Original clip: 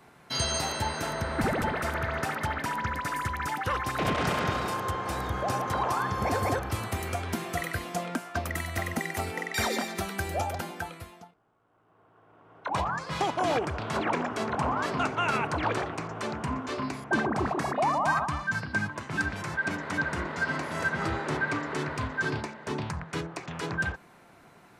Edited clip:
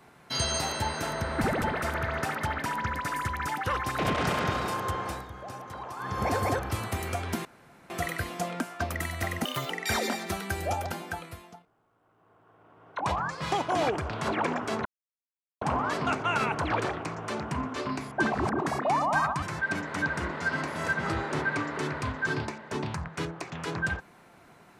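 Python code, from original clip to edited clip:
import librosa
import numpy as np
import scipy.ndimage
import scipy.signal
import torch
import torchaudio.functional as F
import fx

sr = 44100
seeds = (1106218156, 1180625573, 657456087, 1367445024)

y = fx.edit(x, sr, fx.fade_down_up(start_s=5.03, length_s=1.17, db=-11.5, fade_s=0.23),
    fx.insert_room_tone(at_s=7.45, length_s=0.45),
    fx.speed_span(start_s=9.0, length_s=0.39, speed=1.54),
    fx.insert_silence(at_s=14.54, length_s=0.76),
    fx.reverse_span(start_s=17.25, length_s=0.28),
    fx.cut(start_s=18.35, length_s=1.03), tone=tone)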